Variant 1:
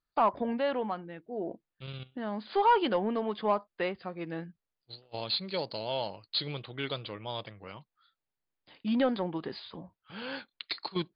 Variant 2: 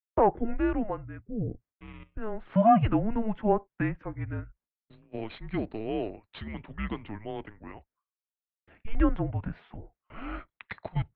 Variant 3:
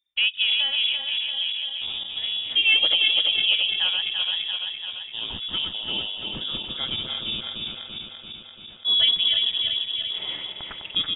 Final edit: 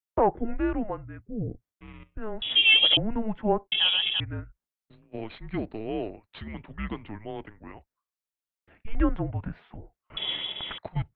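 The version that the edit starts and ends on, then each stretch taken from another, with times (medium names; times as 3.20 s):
2
2.42–2.97 s: from 3
3.72–4.20 s: from 3
10.17–10.78 s: from 3
not used: 1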